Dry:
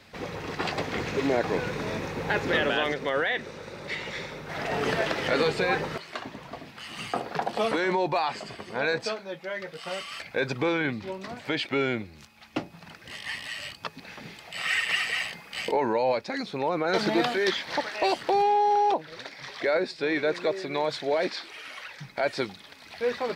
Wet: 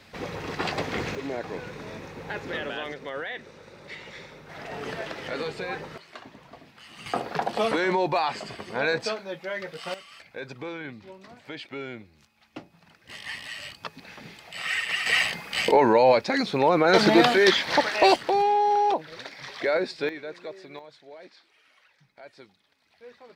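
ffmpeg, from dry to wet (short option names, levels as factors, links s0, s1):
-af "asetnsamples=n=441:p=0,asendcmd='1.15 volume volume -7.5dB;7.06 volume volume 1.5dB;9.94 volume volume -10dB;13.09 volume volume -1.5dB;15.06 volume volume 7dB;18.16 volume volume 0.5dB;20.09 volume volume -11.5dB;20.79 volume volume -20dB',volume=1.12"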